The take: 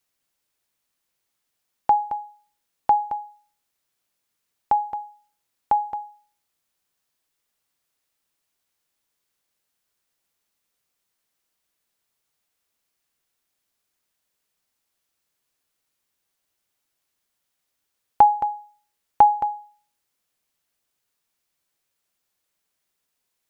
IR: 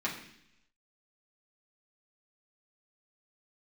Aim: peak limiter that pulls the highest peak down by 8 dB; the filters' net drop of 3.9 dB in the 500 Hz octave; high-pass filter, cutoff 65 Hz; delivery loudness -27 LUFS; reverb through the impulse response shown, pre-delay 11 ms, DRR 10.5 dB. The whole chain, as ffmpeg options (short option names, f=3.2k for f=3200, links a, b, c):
-filter_complex "[0:a]highpass=65,equalizer=f=500:t=o:g=-5.5,alimiter=limit=-13.5dB:level=0:latency=1,asplit=2[a][b];[1:a]atrim=start_sample=2205,adelay=11[c];[b][c]afir=irnorm=-1:irlink=0,volume=-16.5dB[d];[a][d]amix=inputs=2:normalize=0,volume=1.5dB"